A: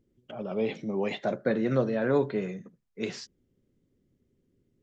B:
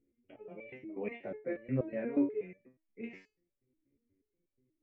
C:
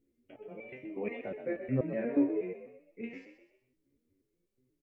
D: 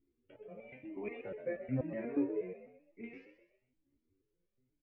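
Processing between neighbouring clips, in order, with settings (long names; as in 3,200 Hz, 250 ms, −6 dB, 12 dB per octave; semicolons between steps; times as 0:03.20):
drawn EQ curve 120 Hz 0 dB, 190 Hz −5 dB, 280 Hz +6 dB, 1,400 Hz −9 dB, 2,300 Hz +8 dB, 3,700 Hz −23 dB; step-sequenced resonator 8.3 Hz 70–580 Hz
echo with shifted repeats 126 ms, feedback 41%, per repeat +38 Hz, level −9.5 dB; level +2 dB
high-frequency loss of the air 160 metres; flanger whose copies keep moving one way rising 1 Hz; level +1 dB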